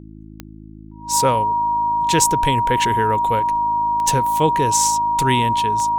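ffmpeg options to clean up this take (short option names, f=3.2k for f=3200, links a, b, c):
-af "adeclick=t=4,bandreject=f=53.2:t=h:w=4,bandreject=f=106.4:t=h:w=4,bandreject=f=159.6:t=h:w=4,bandreject=f=212.8:t=h:w=4,bandreject=f=266:t=h:w=4,bandreject=f=319.2:t=h:w=4,bandreject=f=950:w=30"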